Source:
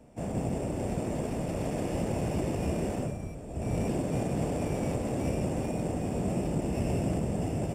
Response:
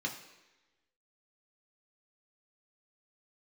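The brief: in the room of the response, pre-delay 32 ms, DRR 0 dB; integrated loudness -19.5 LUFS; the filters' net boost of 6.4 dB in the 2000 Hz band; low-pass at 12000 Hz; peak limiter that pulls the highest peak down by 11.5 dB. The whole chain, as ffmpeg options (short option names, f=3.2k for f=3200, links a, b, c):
-filter_complex "[0:a]lowpass=12k,equalizer=f=2k:t=o:g=8,alimiter=level_in=5.5dB:limit=-24dB:level=0:latency=1,volume=-5.5dB,asplit=2[a][b];[1:a]atrim=start_sample=2205,adelay=32[c];[b][c]afir=irnorm=-1:irlink=0,volume=-3dB[d];[a][d]amix=inputs=2:normalize=0,volume=15dB"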